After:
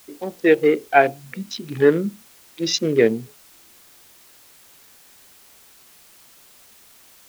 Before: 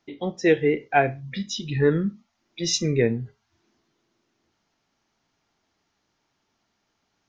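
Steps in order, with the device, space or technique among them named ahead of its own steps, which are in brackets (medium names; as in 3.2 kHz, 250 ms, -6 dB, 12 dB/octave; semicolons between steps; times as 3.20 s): local Wiener filter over 25 samples; dictaphone (band-pass 270–4400 Hz; level rider gain up to 6 dB; wow and flutter; white noise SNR 27 dB); trim +1.5 dB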